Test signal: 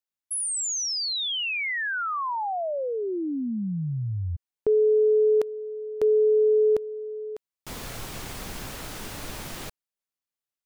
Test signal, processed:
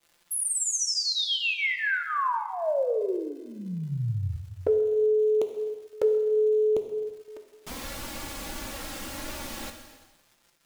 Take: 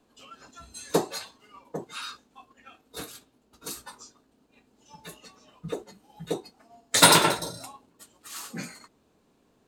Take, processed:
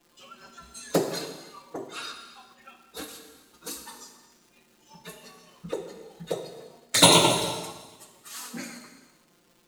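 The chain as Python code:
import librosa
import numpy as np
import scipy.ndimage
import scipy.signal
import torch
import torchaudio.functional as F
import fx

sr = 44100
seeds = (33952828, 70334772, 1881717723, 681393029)

p1 = fx.low_shelf(x, sr, hz=80.0, db=-3.5)
p2 = fx.dmg_crackle(p1, sr, seeds[0], per_s=230.0, level_db=-47.0)
p3 = fx.env_flanger(p2, sr, rest_ms=5.9, full_db=-18.0)
p4 = p3 + fx.echo_feedback(p3, sr, ms=257, feedback_pct=40, wet_db=-23, dry=0)
p5 = fx.rev_gated(p4, sr, seeds[1], gate_ms=470, shape='falling', drr_db=5.0)
y = p5 * librosa.db_to_amplitude(2.5)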